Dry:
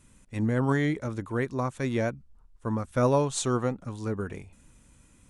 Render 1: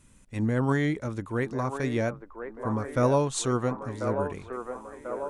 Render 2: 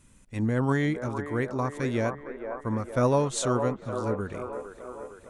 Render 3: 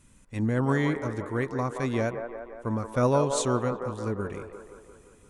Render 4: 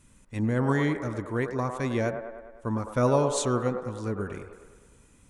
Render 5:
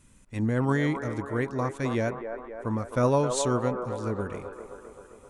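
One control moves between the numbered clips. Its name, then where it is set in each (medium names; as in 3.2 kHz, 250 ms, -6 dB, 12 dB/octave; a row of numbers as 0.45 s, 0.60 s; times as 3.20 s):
feedback echo behind a band-pass, time: 1041 ms, 459 ms, 174 ms, 102 ms, 263 ms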